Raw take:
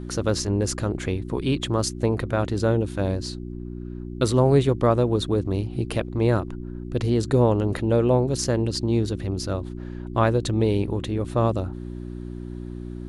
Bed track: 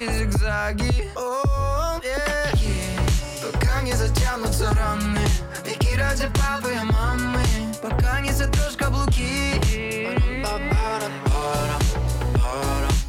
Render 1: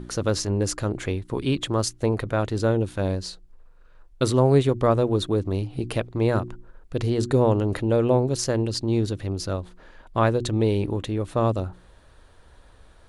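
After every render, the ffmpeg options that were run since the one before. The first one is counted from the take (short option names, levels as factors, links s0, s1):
-af "bandreject=f=60:t=h:w=4,bandreject=f=120:t=h:w=4,bandreject=f=180:t=h:w=4,bandreject=f=240:t=h:w=4,bandreject=f=300:t=h:w=4,bandreject=f=360:t=h:w=4"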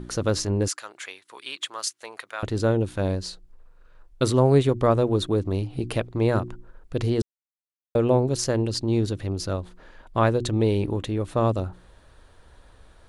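-filter_complex "[0:a]asettb=1/sr,asplit=3[s0][s1][s2];[s0]atrim=end=0.684[s3];[s1]atrim=start=0.68:end=2.43,asetpts=PTS-STARTPTS,afade=t=in:d=0.004:c=qsin,afade=t=out:st=1.746:d=0.004:c=qsin,highpass=1300[s4];[s2]atrim=start=2.426[s5];[s3][s4]acrossfade=d=0.004:c1=hsin:c2=qsin[s6];[s6][s5]acrossfade=d=0.004:c1=qsin:c2=hsin,asplit=3[s7][s8][s9];[s7]atrim=end=7.22,asetpts=PTS-STARTPTS,afade=t=out:st=7.216:d=0.004:c=hsin[s10];[s8]atrim=start=7.22:end=7.95,asetpts=PTS-STARTPTS,volume=0[s11];[s9]atrim=start=7.95,asetpts=PTS-STARTPTS,afade=t=in:d=0.004:c=hsin[s12];[s10][s11][s12]concat=n=3:v=0:a=1"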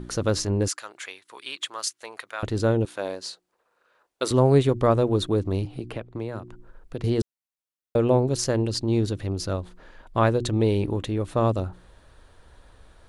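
-filter_complex "[0:a]asettb=1/sr,asplit=3[s0][s1][s2];[s0]atrim=end=2.854[s3];[s1]atrim=start=2.85:end=4.31,asetpts=PTS-STARTPTS,afade=t=in:d=0.004:c=qsin,afade=t=out:st=1.456:d=0.004:c=qsin,highpass=450[s4];[s2]atrim=start=4.306[s5];[s3][s4]acrossfade=d=0.004:c1=hsin:c2=qsin[s6];[s6][s5]acrossfade=d=0.004:c1=qsin:c2=hsin,asettb=1/sr,asplit=3[s7][s8][s9];[s7]atrim=end=5.654[s10];[s8]atrim=start=5.65:end=7.04,asetpts=PTS-STARTPTS,afade=t=in:d=0.004:c=qsin,afade=t=out:st=1.386:d=0.004:c=qsin,acrossover=split=180|2900[s11][s12][s13];[s11]acompressor=threshold=0.0112:ratio=4[s14];[s12]acompressor=threshold=0.0251:ratio=4[s15];[s13]acompressor=threshold=0.00126:ratio=4[s16];[s14][s15][s16]amix=inputs=3:normalize=0[s17];[s9]atrim=start=7.036[s18];[s10][s17]acrossfade=d=0.004:c1=hsin:c2=qsin[s19];[s19][s18]acrossfade=d=0.004:c1=qsin:c2=hsin"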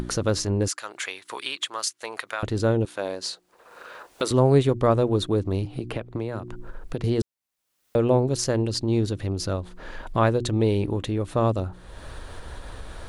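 -af "acompressor=mode=upward:threshold=0.0708:ratio=2.5"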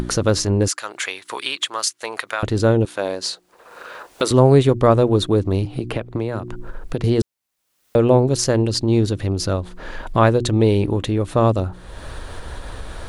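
-af "volume=2,alimiter=limit=0.794:level=0:latency=1"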